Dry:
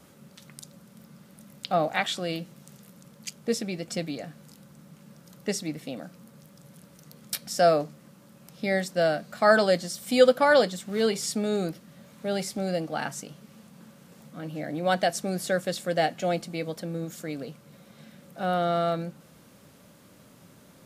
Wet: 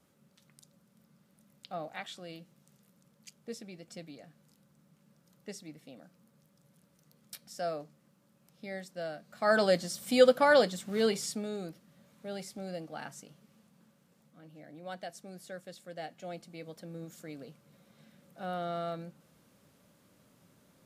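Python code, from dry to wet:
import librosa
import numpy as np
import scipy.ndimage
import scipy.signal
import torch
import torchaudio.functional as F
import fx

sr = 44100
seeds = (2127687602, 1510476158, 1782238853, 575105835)

y = fx.gain(x, sr, db=fx.line((9.23, -15.0), (9.64, -3.5), (11.13, -3.5), (11.54, -11.5), (13.29, -11.5), (14.48, -18.0), (15.92, -18.0), (17.03, -10.5)))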